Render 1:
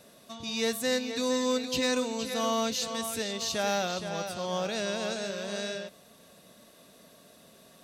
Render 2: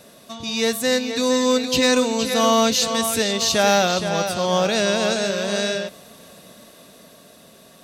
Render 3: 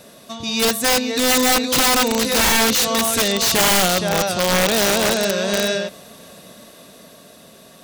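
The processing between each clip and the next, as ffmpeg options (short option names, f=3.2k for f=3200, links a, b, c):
-af "dynaudnorm=f=270:g=13:m=4dB,volume=8dB"
-af "aeval=exprs='(mod(4.47*val(0)+1,2)-1)/4.47':c=same,volume=3dB"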